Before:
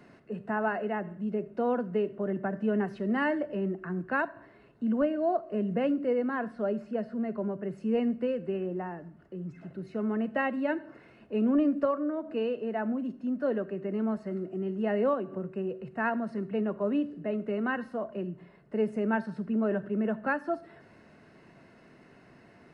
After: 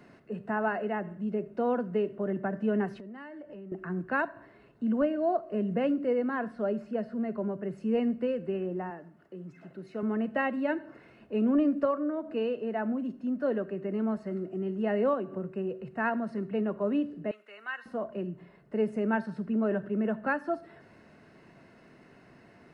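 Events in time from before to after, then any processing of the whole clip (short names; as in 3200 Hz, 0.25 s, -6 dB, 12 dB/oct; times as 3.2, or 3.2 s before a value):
2.93–3.72 compressor 12:1, threshold -41 dBFS
8.9–10.03 HPF 300 Hz 6 dB/oct
17.31–17.86 HPF 1500 Hz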